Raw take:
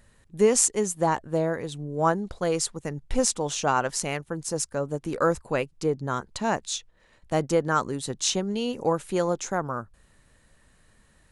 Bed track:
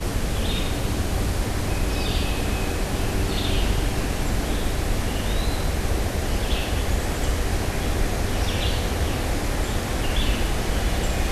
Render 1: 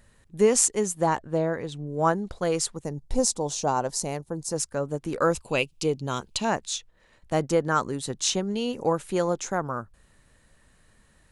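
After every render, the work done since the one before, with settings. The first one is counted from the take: 1.19–1.87 air absorption 50 m; 2.84–4.51 band shelf 2000 Hz -10 dB; 5.33–6.45 resonant high shelf 2200 Hz +6 dB, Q 3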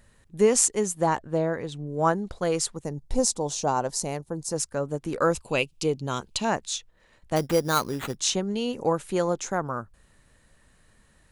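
7.36–8.17 sample-rate reducer 5300 Hz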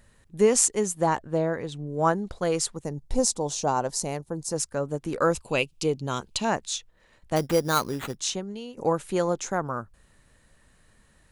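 7.91–8.77 fade out linear, to -14.5 dB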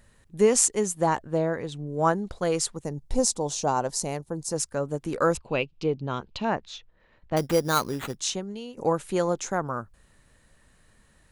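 5.37–7.37 air absorption 240 m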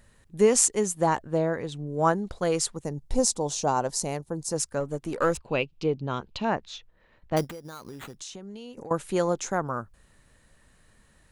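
4.8–5.48 half-wave gain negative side -3 dB; 7.44–8.91 compressor 16:1, threshold -36 dBFS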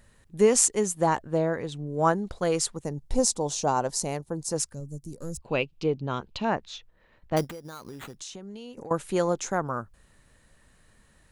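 4.74–5.42 EQ curve 140 Hz 0 dB, 1500 Hz -30 dB, 3000 Hz -23 dB, 5400 Hz -3 dB, 11000 Hz +1 dB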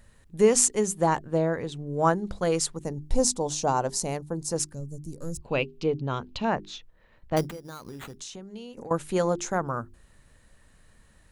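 low shelf 150 Hz +4.5 dB; notches 50/100/150/200/250/300/350/400 Hz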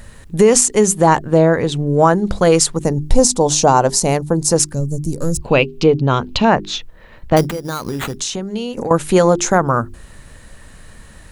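in parallel at +1 dB: compressor, threshold -32 dBFS, peak gain reduction 17 dB; on the sum: maximiser +11 dB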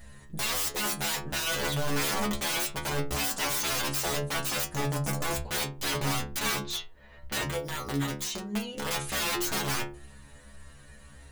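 wrapped overs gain 15 dB; metallic resonator 69 Hz, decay 0.45 s, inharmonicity 0.002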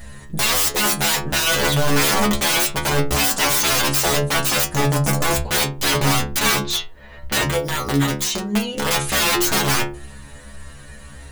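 gain +11.5 dB

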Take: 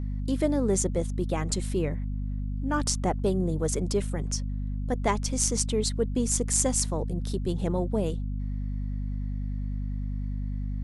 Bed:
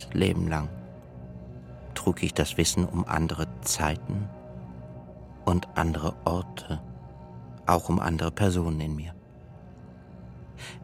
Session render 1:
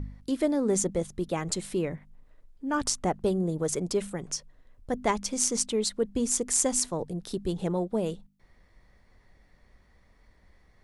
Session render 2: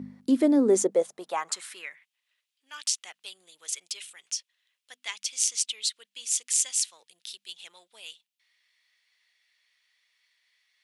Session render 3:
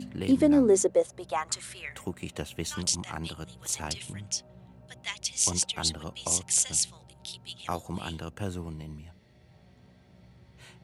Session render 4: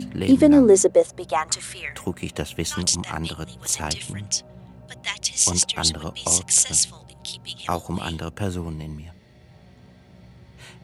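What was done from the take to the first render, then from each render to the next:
de-hum 50 Hz, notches 5
high-pass sweep 230 Hz -> 2900 Hz, 0.5–2.1
add bed -10.5 dB
gain +7.5 dB; limiter -1 dBFS, peak gain reduction 2.5 dB

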